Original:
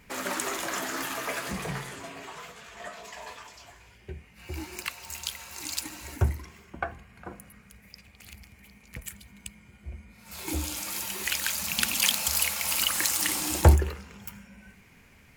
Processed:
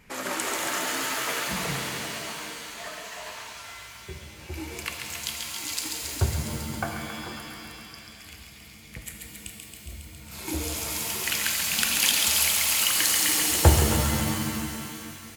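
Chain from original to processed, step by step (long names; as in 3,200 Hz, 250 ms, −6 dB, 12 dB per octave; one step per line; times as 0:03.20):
delay with a high-pass on its return 137 ms, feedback 78%, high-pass 1,500 Hz, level −5 dB
downsampling to 32,000 Hz
reverb with rising layers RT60 2.1 s, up +7 semitones, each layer −2 dB, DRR 4.5 dB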